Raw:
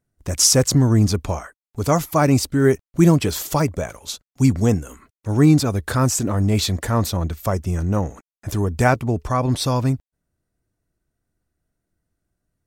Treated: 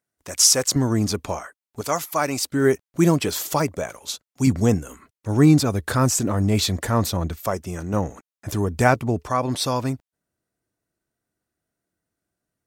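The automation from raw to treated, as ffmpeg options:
-af "asetnsamples=n=441:p=0,asendcmd='0.76 highpass f 270;1.81 highpass f 940;2.52 highpass f 260;4.47 highpass f 92;7.36 highpass f 320;7.93 highpass f 110;9.23 highpass f 290',highpass=f=770:p=1"

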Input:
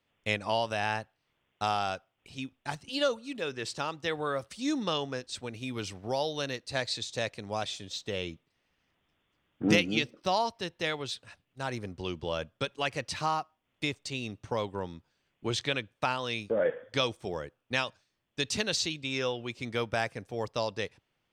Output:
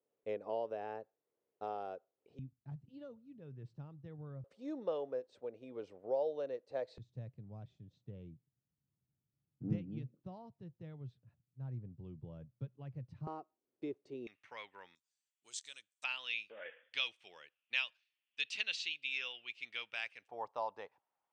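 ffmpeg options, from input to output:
-af "asetnsamples=n=441:p=0,asendcmd='2.39 bandpass f 130;4.44 bandpass f 510;6.98 bandpass f 130;13.27 bandpass f 380;14.27 bandpass f 2100;14.95 bandpass f 7700;16.04 bandpass f 2700;20.28 bandpass f 870',bandpass=f=450:t=q:w=3.6:csg=0"

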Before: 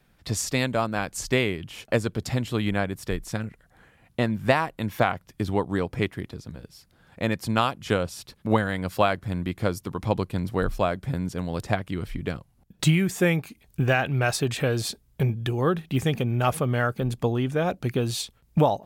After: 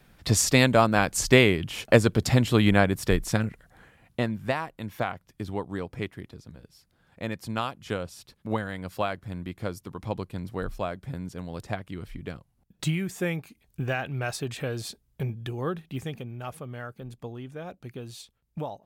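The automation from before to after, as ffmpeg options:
-af "volume=5.5dB,afade=t=out:st=3.24:d=1.23:silence=0.237137,afade=t=out:st=15.69:d=0.67:silence=0.446684"

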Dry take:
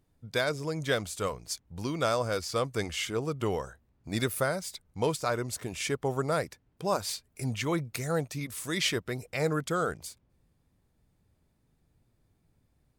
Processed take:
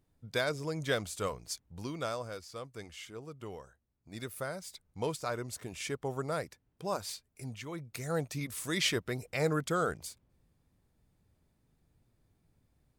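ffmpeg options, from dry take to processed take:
-af "volume=16.5dB,afade=t=out:st=1.42:d=1.03:silence=0.281838,afade=t=in:st=4.12:d=0.74:silence=0.398107,afade=t=out:st=7.04:d=0.68:silence=0.446684,afade=t=in:st=7.72:d=0.61:silence=0.266073"

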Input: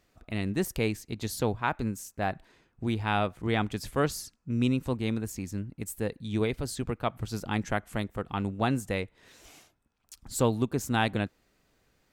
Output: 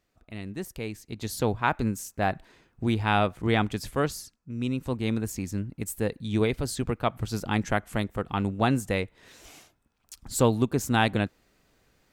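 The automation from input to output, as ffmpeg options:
-af "volume=13.5dB,afade=t=in:st=0.86:d=0.81:silence=0.298538,afade=t=out:st=3.51:d=1.03:silence=0.316228,afade=t=in:st=4.54:d=0.68:silence=0.334965"

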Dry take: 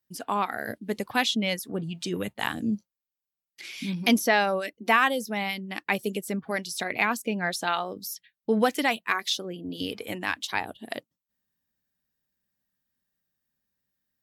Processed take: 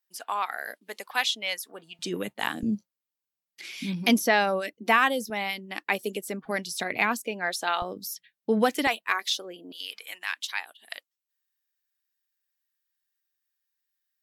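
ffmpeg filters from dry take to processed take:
-af "asetnsamples=n=441:p=0,asendcmd='1.99 highpass f 200;2.63 highpass f 96;5.3 highpass f 270;6.45 highpass f 90;7.23 highpass f 350;7.82 highpass f 110;8.87 highpass f 450;9.72 highpass f 1500',highpass=790"

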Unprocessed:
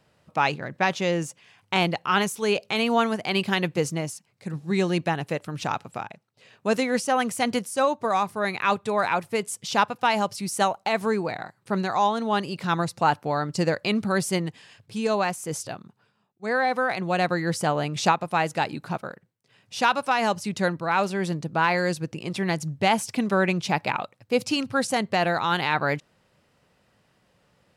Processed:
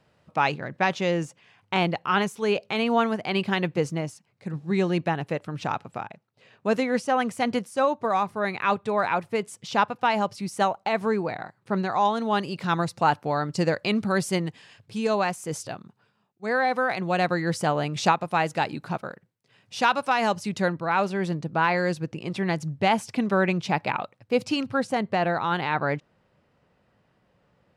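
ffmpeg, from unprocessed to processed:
-af "asetnsamples=n=441:p=0,asendcmd='1.25 lowpass f 2700;12.05 lowpass f 6700;20.62 lowpass f 3300;24.76 lowpass f 1700',lowpass=f=4.5k:p=1"

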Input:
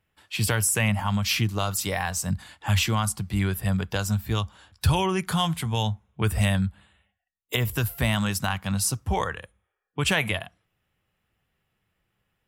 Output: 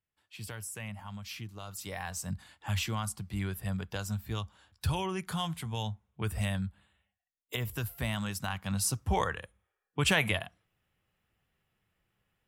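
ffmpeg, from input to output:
-af "volume=-3dB,afade=t=in:st=1.62:d=0.52:silence=0.375837,afade=t=in:st=8.39:d=0.8:silence=0.473151"

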